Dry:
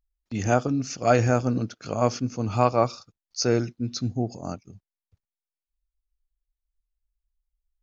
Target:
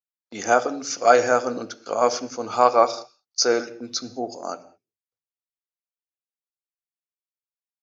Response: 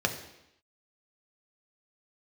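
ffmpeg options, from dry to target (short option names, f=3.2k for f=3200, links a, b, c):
-filter_complex "[0:a]agate=range=-21dB:threshold=-38dB:ratio=16:detection=peak,highpass=530,asplit=2[a][b];[1:a]atrim=start_sample=2205,afade=t=out:st=0.27:d=0.01,atrim=end_sample=12348[c];[b][c]afir=irnorm=-1:irlink=0,volume=-13.5dB[d];[a][d]amix=inputs=2:normalize=0,volume=4dB"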